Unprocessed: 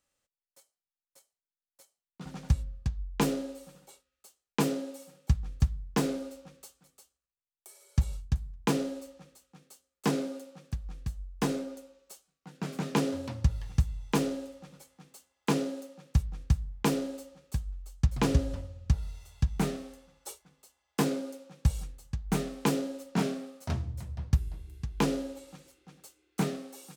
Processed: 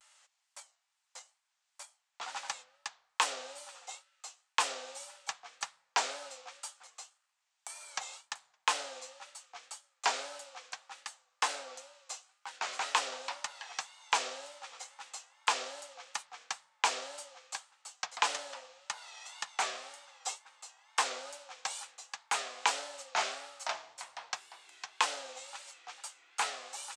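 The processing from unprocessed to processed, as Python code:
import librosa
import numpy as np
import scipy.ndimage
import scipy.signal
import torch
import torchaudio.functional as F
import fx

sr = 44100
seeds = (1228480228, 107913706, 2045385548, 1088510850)

y = scipy.signal.sosfilt(scipy.signal.cheby1(3, 1.0, [800.0, 7900.0], 'bandpass', fs=sr, output='sos'), x)
y = fx.wow_flutter(y, sr, seeds[0], rate_hz=2.1, depth_cents=110.0)
y = fx.band_squash(y, sr, depth_pct=40)
y = F.gain(torch.from_numpy(y), 8.0).numpy()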